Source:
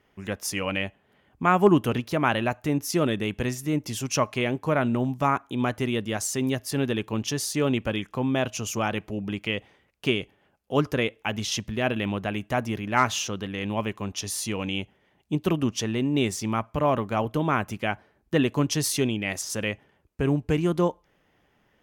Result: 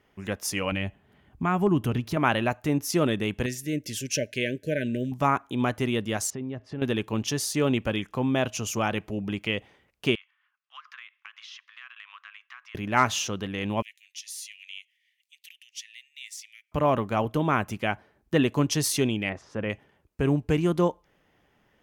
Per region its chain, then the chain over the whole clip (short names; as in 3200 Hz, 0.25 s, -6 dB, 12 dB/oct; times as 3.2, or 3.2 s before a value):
0.72–2.17 low shelf 190 Hz +11 dB + notch 520 Hz, Q 7.2 + compressor 1.5:1, threshold -31 dBFS
3.46–5.12 brick-wall FIR band-stop 630–1500 Hz + low shelf 390 Hz -5.5 dB
6.3–6.82 tape spacing loss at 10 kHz 36 dB + compressor 3:1, threshold -32 dBFS
10.15–12.75 Chebyshev high-pass 1100 Hz, order 5 + air absorption 230 m + compressor 4:1, threshold -42 dBFS
13.82–16.72 compressor 1.5:1, threshold -48 dBFS + steep high-pass 1900 Hz 72 dB/oct
19.29–19.7 LPF 1600 Hz + notches 60/120 Hz
whole clip: dry